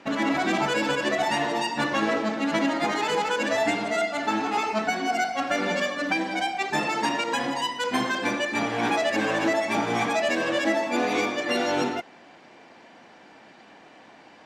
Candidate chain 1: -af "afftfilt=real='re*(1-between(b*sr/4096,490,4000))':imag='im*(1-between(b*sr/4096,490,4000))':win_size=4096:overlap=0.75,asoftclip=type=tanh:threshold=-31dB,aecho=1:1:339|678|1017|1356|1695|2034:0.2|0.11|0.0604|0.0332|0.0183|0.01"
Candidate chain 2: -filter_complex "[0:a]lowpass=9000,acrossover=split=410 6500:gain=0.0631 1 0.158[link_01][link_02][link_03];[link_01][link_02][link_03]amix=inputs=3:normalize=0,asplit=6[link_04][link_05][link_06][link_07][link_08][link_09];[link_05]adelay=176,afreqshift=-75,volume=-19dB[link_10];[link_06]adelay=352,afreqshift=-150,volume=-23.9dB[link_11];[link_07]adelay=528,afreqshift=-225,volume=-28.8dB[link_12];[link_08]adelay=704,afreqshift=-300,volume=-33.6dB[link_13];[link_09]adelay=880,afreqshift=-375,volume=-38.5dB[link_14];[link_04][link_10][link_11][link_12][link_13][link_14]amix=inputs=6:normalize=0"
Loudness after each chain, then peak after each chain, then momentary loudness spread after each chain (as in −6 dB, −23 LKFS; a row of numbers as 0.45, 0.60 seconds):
−35.5, −26.5 LKFS; −28.0, −13.0 dBFS; 3, 3 LU